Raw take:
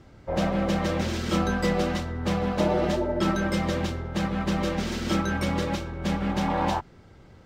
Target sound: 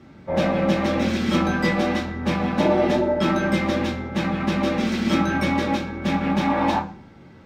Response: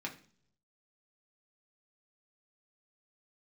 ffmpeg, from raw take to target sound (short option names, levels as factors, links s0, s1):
-filter_complex "[1:a]atrim=start_sample=2205[s0];[0:a][s0]afir=irnorm=-1:irlink=0,volume=1.68"